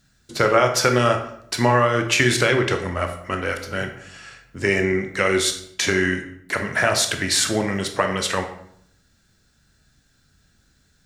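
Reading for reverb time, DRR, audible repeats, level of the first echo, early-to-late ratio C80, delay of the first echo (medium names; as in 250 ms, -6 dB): 0.70 s, 5.0 dB, no echo, no echo, 12.0 dB, no echo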